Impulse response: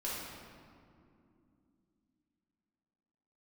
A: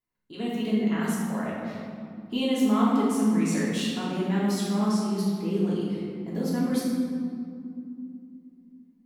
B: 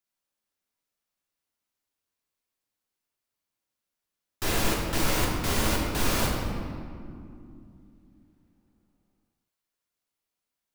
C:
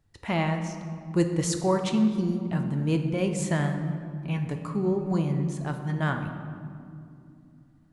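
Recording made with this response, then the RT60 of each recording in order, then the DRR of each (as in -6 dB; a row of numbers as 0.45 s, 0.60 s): A; 2.6 s, 2.6 s, 2.7 s; -8.0 dB, -2.5 dB, 5.0 dB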